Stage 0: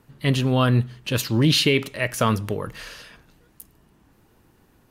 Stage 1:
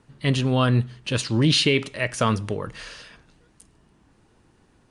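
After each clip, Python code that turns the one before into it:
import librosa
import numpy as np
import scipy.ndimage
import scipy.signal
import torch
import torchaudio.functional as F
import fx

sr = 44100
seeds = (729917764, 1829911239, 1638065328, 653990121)

y = scipy.signal.sosfilt(scipy.signal.ellip(4, 1.0, 40, 9600.0, 'lowpass', fs=sr, output='sos'), x)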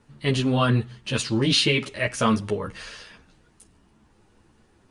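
y = fx.ensemble(x, sr)
y = F.gain(torch.from_numpy(y), 3.0).numpy()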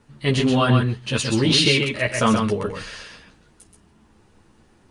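y = x + 10.0 ** (-5.0 / 20.0) * np.pad(x, (int(128 * sr / 1000.0), 0))[:len(x)]
y = F.gain(torch.from_numpy(y), 2.5).numpy()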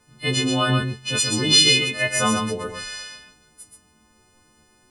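y = fx.freq_snap(x, sr, grid_st=3)
y = F.gain(torch.from_numpy(y), -4.0).numpy()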